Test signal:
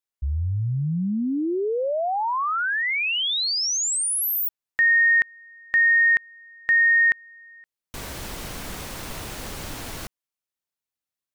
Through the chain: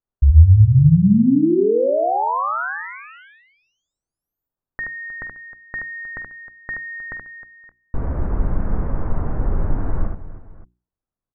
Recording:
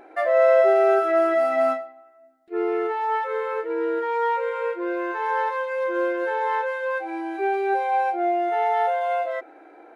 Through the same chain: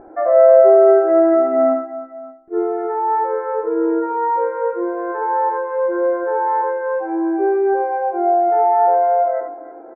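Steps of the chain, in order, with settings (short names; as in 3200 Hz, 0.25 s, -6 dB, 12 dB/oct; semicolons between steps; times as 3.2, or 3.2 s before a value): inverse Chebyshev low-pass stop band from 3900 Hz, stop band 50 dB; tilt -3.5 dB/oct; notches 60/120/180/240/300/360 Hz; on a send: tapped delay 49/76/312/571 ms -14.5/-5/-15/-19.5 dB; on the sum: gain +2.5 dB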